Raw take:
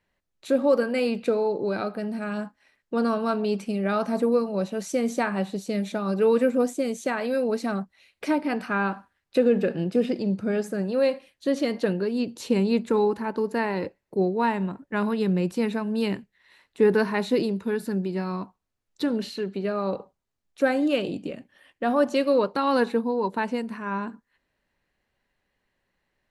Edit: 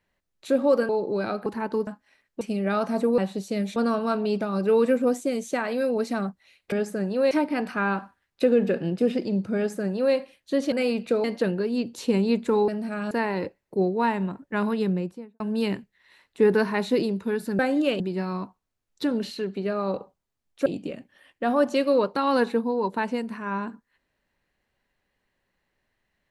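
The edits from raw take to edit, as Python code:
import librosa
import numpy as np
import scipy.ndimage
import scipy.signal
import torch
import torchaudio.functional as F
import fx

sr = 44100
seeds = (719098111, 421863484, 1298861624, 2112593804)

y = fx.studio_fade_out(x, sr, start_s=15.14, length_s=0.66)
y = fx.edit(y, sr, fx.move(start_s=0.89, length_s=0.52, to_s=11.66),
    fx.swap(start_s=1.98, length_s=0.43, other_s=13.1, other_length_s=0.41),
    fx.move(start_s=2.95, length_s=0.65, to_s=5.94),
    fx.cut(start_s=4.37, length_s=0.99),
    fx.duplicate(start_s=10.5, length_s=0.59, to_s=8.25),
    fx.move(start_s=20.65, length_s=0.41, to_s=17.99), tone=tone)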